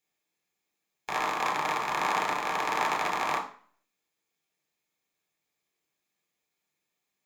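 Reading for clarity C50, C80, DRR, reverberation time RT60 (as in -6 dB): 9.5 dB, 14.0 dB, 1.0 dB, 0.45 s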